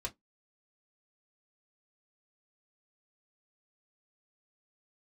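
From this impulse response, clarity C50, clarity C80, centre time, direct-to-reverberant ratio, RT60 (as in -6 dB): 25.0 dB, 39.0 dB, 8 ms, -2.5 dB, 0.15 s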